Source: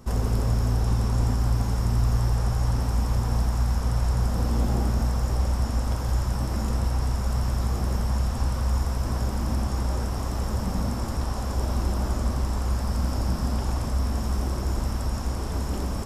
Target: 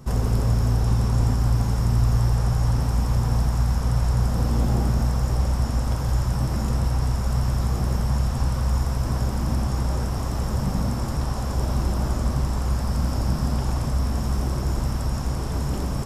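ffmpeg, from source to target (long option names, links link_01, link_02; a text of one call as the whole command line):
ffmpeg -i in.wav -af "equalizer=frequency=140:width=5.1:gain=11.5,volume=1.5dB" out.wav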